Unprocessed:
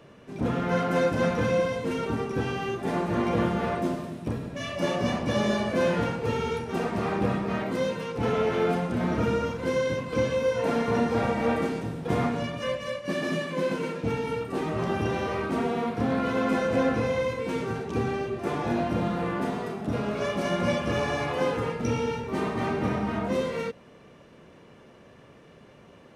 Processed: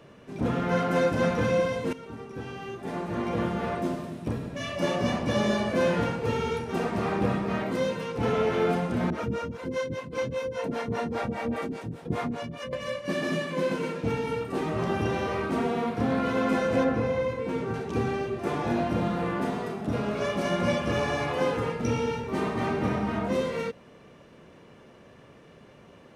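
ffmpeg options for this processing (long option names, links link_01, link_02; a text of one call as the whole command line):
ffmpeg -i in.wav -filter_complex "[0:a]asettb=1/sr,asplit=3[link_01][link_02][link_03];[link_01]atrim=end=9.104[link_04];[link_02]atrim=start=9.1:end=12.73,asetpts=PTS-STARTPTS,afade=type=in:duration=0.004:curve=qsin,afade=type=out:start_time=3.626:duration=0.004:curve=qsin,acrossover=split=420[link_05][link_06];[link_05]aeval=exprs='val(0)*(1-1/2+1/2*cos(2*PI*5*n/s))':channel_layout=same[link_07];[link_06]aeval=exprs='val(0)*(1-1/2-1/2*cos(2*PI*5*n/s))':channel_layout=same[link_08];[link_07][link_08]amix=inputs=2:normalize=0[link_09];[link_03]atrim=start=12.726[link_10];[link_04][link_09]acrossfade=duration=0.004:curve1=hsin:curve2=qsin[link_11];[link_11][link_10]acrossfade=duration=0.004:curve1=qsin:curve2=hsin,asettb=1/sr,asplit=3[link_12][link_13][link_14];[link_12]atrim=end=16.844[link_15];[link_13]atrim=start=16.84:end=17.74,asetpts=PTS-STARTPTS,afade=type=in:duration=0.004:curve=qsin,afade=type=out:start_time=0.896:duration=0.004:curve=qsin,highshelf=frequency=2400:gain=-9[link_16];[link_14]atrim=start=17.736[link_17];[link_15][link_16]acrossfade=duration=0.004:curve1=hsin:curve2=qsin[link_18];[link_18][link_17]acrossfade=duration=0.004:curve1=qsin:curve2=hsin,asplit=2[link_19][link_20];[link_19]atrim=end=1.93,asetpts=PTS-STARTPTS,afade=type=out:start_time=1.926:duration=0.004:curve=hsin:silence=0.188365[link_21];[link_20]atrim=start=1.93,asetpts=PTS-STARTPTS,afade=type=in:duration=2.39:silence=0.188365[link_22];[link_21][link_22]concat=n=2:v=0:a=1" out.wav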